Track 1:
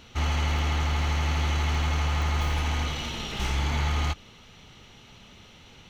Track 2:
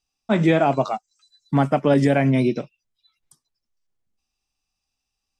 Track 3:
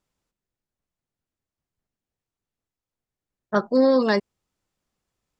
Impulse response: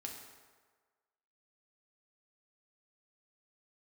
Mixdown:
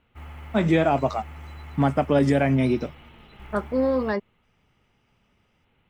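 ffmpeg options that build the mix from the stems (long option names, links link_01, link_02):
-filter_complex "[0:a]lowpass=frequency=2600:width=0.5412,lowpass=frequency=2600:width=1.3066,acrusher=bits=7:mode=log:mix=0:aa=0.000001,volume=-14.5dB[link_01];[1:a]adelay=250,volume=-2.5dB[link_02];[2:a]lowpass=1700,aemphasis=mode=production:type=75kf,volume=-5dB[link_03];[link_01][link_02][link_03]amix=inputs=3:normalize=0"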